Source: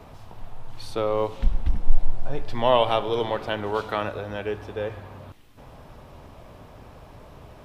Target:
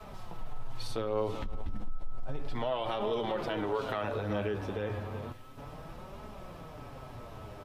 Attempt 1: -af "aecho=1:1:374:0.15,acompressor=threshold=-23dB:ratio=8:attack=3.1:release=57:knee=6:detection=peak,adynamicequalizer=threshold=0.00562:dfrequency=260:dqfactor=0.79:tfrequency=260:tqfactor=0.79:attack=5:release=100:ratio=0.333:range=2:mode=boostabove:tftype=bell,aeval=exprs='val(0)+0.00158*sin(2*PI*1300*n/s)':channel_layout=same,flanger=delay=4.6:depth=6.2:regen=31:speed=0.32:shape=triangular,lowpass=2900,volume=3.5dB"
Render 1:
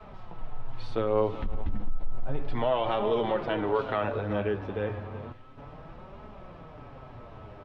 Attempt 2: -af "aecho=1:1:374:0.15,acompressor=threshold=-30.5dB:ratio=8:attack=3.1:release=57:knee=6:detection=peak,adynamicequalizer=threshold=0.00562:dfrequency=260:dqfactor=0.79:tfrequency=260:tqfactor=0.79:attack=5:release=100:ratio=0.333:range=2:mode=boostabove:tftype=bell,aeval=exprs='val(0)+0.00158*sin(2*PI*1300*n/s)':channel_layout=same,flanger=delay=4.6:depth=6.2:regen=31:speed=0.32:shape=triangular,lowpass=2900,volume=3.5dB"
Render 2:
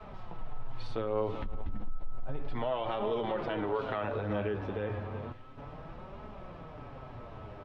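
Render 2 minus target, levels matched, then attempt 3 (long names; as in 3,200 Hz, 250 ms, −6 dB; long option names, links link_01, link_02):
4,000 Hz band −4.5 dB
-af "aecho=1:1:374:0.15,acompressor=threshold=-30.5dB:ratio=8:attack=3.1:release=57:knee=6:detection=peak,adynamicequalizer=threshold=0.00562:dfrequency=260:dqfactor=0.79:tfrequency=260:tqfactor=0.79:attack=5:release=100:ratio=0.333:range=2:mode=boostabove:tftype=bell,aeval=exprs='val(0)+0.00158*sin(2*PI*1300*n/s)':channel_layout=same,flanger=delay=4.6:depth=6.2:regen=31:speed=0.32:shape=triangular,volume=3.5dB"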